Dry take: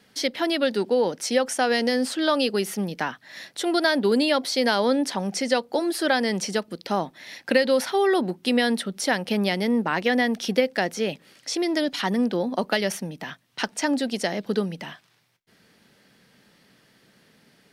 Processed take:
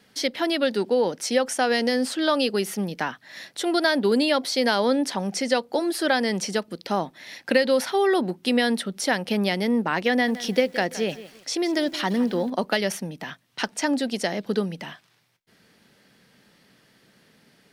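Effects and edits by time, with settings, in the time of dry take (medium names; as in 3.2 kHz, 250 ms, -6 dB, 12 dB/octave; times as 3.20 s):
10.11–12.50 s: bit-crushed delay 167 ms, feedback 35%, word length 7-bit, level -15 dB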